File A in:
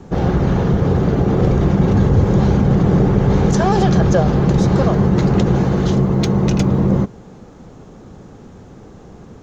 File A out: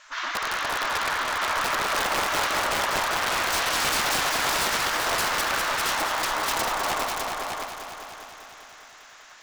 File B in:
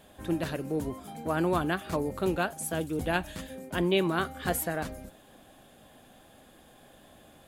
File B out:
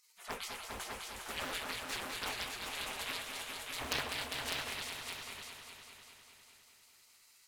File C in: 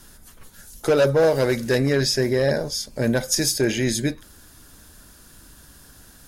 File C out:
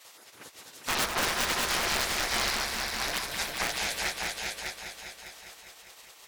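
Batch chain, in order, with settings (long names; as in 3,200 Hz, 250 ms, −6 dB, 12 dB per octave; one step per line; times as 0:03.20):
gate on every frequency bin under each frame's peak −25 dB weak
high-shelf EQ 10,000 Hz −9.5 dB
wrap-around overflow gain 26.5 dB
echo machine with several playback heads 201 ms, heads all three, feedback 49%, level −7 dB
highs frequency-modulated by the lows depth 0.85 ms
level +7 dB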